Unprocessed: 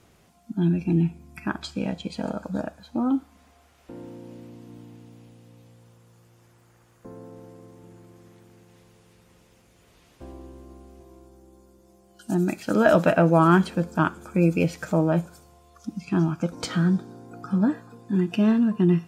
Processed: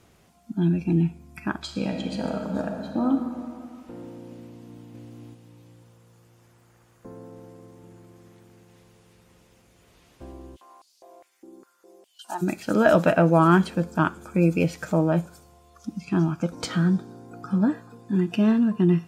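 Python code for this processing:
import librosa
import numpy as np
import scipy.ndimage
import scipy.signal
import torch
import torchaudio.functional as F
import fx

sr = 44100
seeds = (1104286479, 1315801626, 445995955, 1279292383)

y = fx.reverb_throw(x, sr, start_s=1.6, length_s=1.48, rt60_s=2.6, drr_db=2.5)
y = fx.echo_throw(y, sr, start_s=4.45, length_s=0.4, ms=490, feedback_pct=25, wet_db=-3.0)
y = fx.filter_held_highpass(y, sr, hz=4.9, low_hz=280.0, high_hz=4600.0, at=(10.55, 12.41), fade=0.02)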